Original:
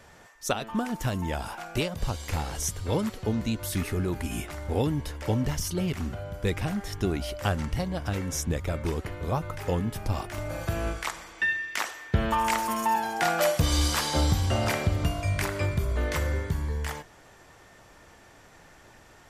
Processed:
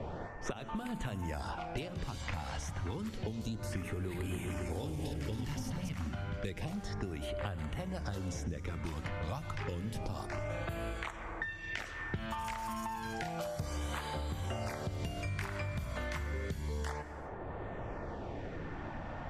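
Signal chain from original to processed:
0:03.87–0:05.89: feedback delay that plays each chunk backwards 136 ms, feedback 70%, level −4 dB
low-pass that shuts in the quiet parts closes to 640 Hz, open at −25.5 dBFS
high-shelf EQ 7,600 Hz −7 dB
mains-hum notches 60/120/180/240/300 Hz
downward compressor, threshold −36 dBFS, peak gain reduction 16.5 dB
auto-filter notch sine 0.3 Hz 380–5,800 Hz
convolution reverb, pre-delay 78 ms, DRR 14 dB
multiband upward and downward compressor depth 100%

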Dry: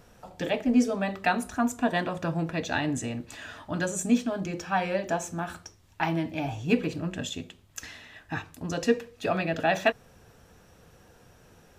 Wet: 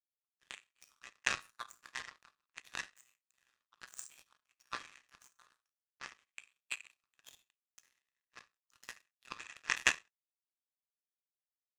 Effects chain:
linear-phase brick-wall band-pass 1,000–10,000 Hz
comb filter 1.6 ms, depth 60%
amplitude modulation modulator 130 Hz, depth 90%
reverb whose tail is shaped and stops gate 230 ms falling, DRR −3.5 dB
power curve on the samples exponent 3
level +7 dB

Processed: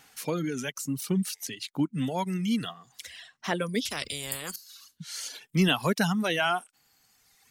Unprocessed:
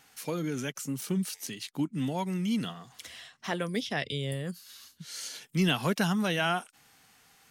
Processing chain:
reverb reduction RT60 1.6 s
0:03.85–0:04.56: every bin compressed towards the loudest bin 4 to 1
level +3.5 dB

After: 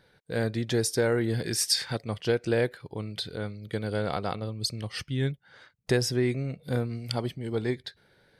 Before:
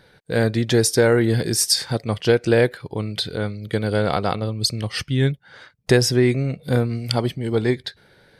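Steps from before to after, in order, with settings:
0:01.44–0:01.97: parametric band 2,200 Hz +8 dB 1.8 octaves
level −9 dB

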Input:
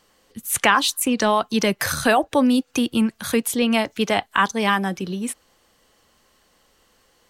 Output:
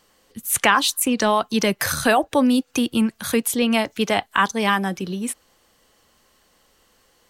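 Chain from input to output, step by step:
high-shelf EQ 9,600 Hz +3.5 dB

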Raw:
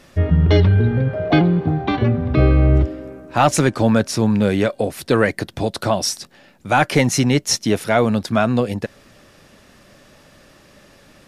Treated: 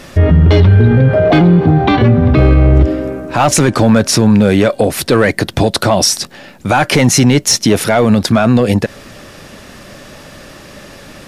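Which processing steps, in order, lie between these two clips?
in parallel at −9.5 dB: wave folding −11 dBFS
on the sum: boost into a limiter +12.5 dB
level −1 dB

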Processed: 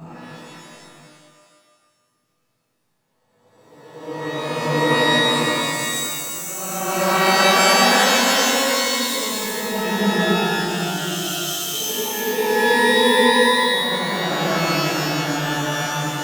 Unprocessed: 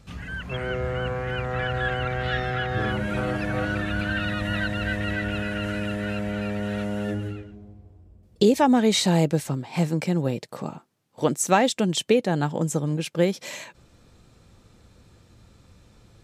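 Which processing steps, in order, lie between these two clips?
extreme stretch with random phases 9.2×, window 0.25 s, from 0:10.74
sample-and-hold tremolo, depth 55%
reverb with rising layers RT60 1.4 s, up +12 semitones, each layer −2 dB, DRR −8.5 dB
level −7 dB

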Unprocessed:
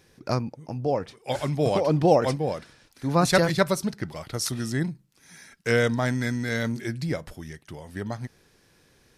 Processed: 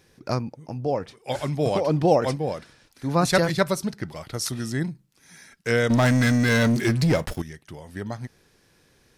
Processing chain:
0:05.90–0:07.42: leveller curve on the samples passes 3

